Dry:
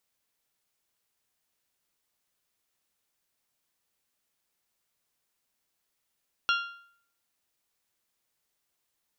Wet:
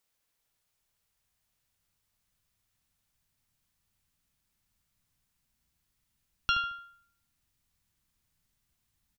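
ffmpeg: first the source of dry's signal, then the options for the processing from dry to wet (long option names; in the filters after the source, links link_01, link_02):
-f lavfi -i "aevalsrc='0.0841*pow(10,-3*t/0.61)*sin(2*PI*1390*t)+0.0531*pow(10,-3*t/0.495)*sin(2*PI*2780*t)+0.0335*pow(10,-3*t/0.469)*sin(2*PI*3336*t)+0.0211*pow(10,-3*t/0.439)*sin(2*PI*4170*t)+0.0133*pow(10,-3*t/0.402)*sin(2*PI*5560*t)':duration=1.55:sample_rate=44100"
-filter_complex "[0:a]asubboost=boost=11:cutoff=140,asplit=2[link_01][link_02];[link_02]adelay=74,lowpass=frequency=2000:poles=1,volume=-8dB,asplit=2[link_03][link_04];[link_04]adelay=74,lowpass=frequency=2000:poles=1,volume=0.39,asplit=2[link_05][link_06];[link_06]adelay=74,lowpass=frequency=2000:poles=1,volume=0.39,asplit=2[link_07][link_08];[link_08]adelay=74,lowpass=frequency=2000:poles=1,volume=0.39[link_09];[link_03][link_05][link_07][link_09]amix=inputs=4:normalize=0[link_10];[link_01][link_10]amix=inputs=2:normalize=0"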